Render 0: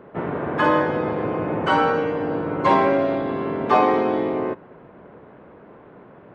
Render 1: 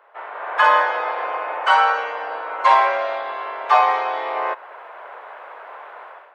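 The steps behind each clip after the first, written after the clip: inverse Chebyshev high-pass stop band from 160 Hz, stop band 70 dB; AGC gain up to 16 dB; gain -1 dB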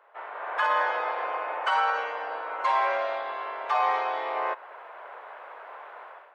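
limiter -10 dBFS, peak gain reduction 8 dB; gain -5.5 dB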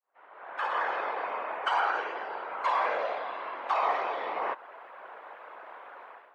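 opening faded in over 0.99 s; whisperiser; gain -3 dB

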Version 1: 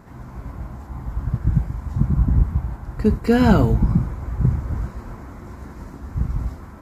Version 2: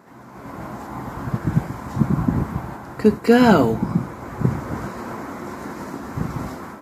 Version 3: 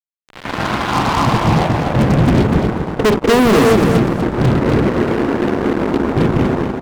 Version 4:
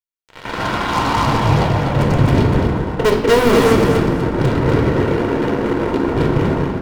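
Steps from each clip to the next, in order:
HPF 240 Hz 12 dB/oct; AGC gain up to 10.5 dB
low-pass sweep 2100 Hz -> 440 Hz, 0.42–2.26; fuzz box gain 29 dB, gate -32 dBFS; feedback echo 0.245 s, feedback 24%, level -6.5 dB; gain +3.5 dB
reverb RT60 0.75 s, pre-delay 3 ms, DRR 3.5 dB; gain -3.5 dB

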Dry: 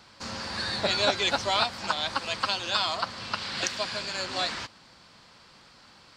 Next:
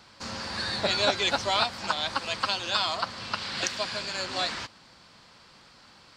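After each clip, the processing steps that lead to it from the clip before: nothing audible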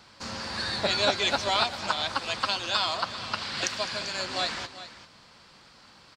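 tapped delay 0.207/0.392 s -17.5/-14.5 dB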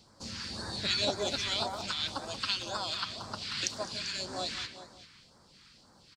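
speakerphone echo 0.18 s, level -6 dB; phaser stages 2, 1.9 Hz, lowest notch 590–2700 Hz; gain -3 dB

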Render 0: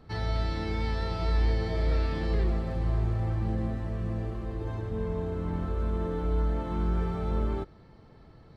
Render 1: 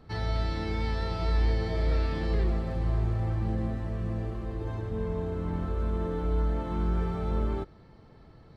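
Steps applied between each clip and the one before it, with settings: nothing audible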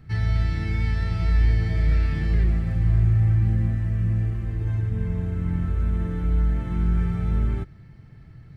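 graphic EQ 125/250/500/1000/2000/4000 Hz +8/-4/-11/-11/+5/-9 dB; gain +5.5 dB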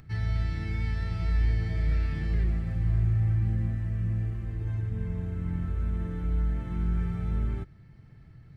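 upward compressor, threshold -41 dBFS; gain -6 dB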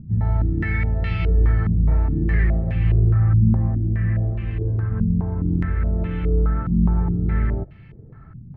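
stepped low-pass 4.8 Hz 220–2700 Hz; gain +8 dB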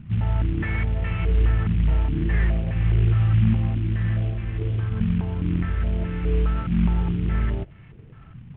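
CVSD 16 kbps; gain -2 dB

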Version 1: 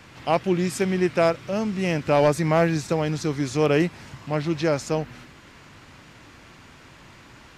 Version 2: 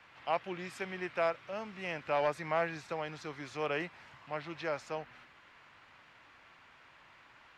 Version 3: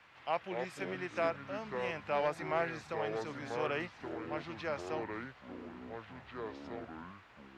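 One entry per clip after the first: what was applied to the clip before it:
three-band isolator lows -15 dB, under 600 Hz, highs -15 dB, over 3600 Hz; gain -7.5 dB
echoes that change speed 0.15 s, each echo -5 st, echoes 3, each echo -6 dB; gain -2 dB

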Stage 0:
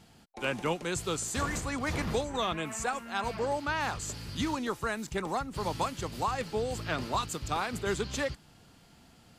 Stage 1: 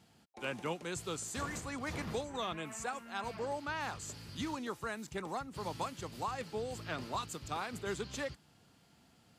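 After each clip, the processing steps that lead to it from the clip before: HPF 75 Hz; gain -7 dB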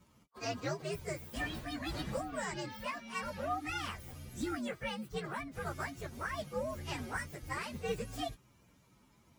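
inharmonic rescaling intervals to 130%; high shelf 9800 Hz -7.5 dB; gain +4.5 dB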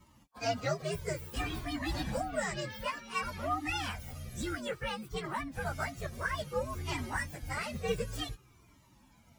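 cascading flanger falling 0.57 Hz; gain +8 dB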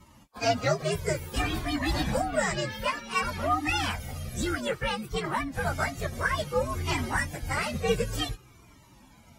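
gain +7 dB; AAC 48 kbps 48000 Hz

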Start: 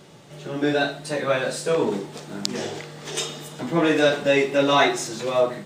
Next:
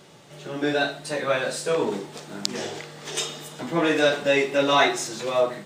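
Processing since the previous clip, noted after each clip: low shelf 390 Hz -5 dB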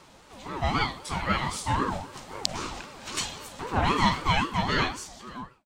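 ending faded out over 1.40 s; ring modulator with a swept carrier 560 Hz, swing 35%, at 3.8 Hz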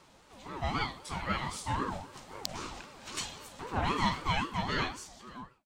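hard clip -9.5 dBFS, distortion -28 dB; gain -6.5 dB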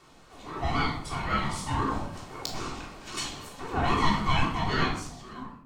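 shoebox room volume 940 m³, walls furnished, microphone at 3.4 m

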